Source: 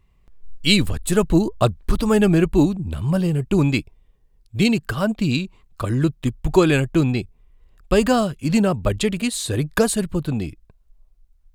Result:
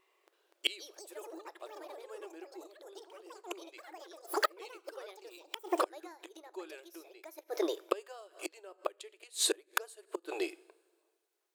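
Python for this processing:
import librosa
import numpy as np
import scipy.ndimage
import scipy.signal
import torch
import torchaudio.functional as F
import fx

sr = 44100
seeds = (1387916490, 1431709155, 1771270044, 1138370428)

y = fx.echo_pitch(x, sr, ms=327, semitones=6, count=3, db_per_echo=-3.0)
y = fx.rev_double_slope(y, sr, seeds[0], early_s=0.62, late_s=2.0, knee_db=-19, drr_db=17.0)
y = fx.gate_flip(y, sr, shuts_db=-13.0, range_db=-29)
y = fx.brickwall_highpass(y, sr, low_hz=320.0)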